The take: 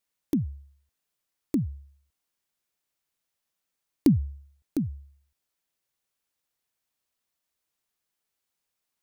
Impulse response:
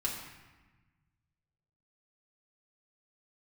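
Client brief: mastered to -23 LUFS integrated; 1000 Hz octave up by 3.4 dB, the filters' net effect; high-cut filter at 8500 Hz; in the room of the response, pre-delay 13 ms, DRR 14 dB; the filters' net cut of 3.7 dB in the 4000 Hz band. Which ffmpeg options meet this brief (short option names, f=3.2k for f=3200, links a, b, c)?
-filter_complex "[0:a]lowpass=8.5k,equalizer=f=1k:t=o:g=4.5,equalizer=f=4k:t=o:g=-4.5,asplit=2[a][b];[1:a]atrim=start_sample=2205,adelay=13[c];[b][c]afir=irnorm=-1:irlink=0,volume=-18dB[d];[a][d]amix=inputs=2:normalize=0,volume=6dB"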